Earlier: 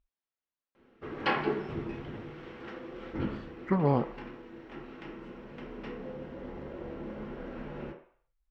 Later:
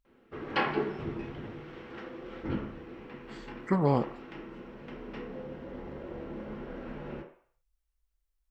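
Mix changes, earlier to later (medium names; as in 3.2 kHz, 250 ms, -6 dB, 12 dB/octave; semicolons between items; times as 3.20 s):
speech: remove distance through air 190 m; background: entry -0.70 s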